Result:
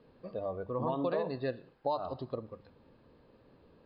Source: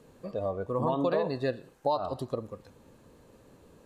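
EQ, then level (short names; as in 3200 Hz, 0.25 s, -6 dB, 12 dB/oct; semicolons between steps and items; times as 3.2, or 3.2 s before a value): brick-wall FIR low-pass 5200 Hz; air absorption 55 m; notches 50/100/150/200 Hz; -4.5 dB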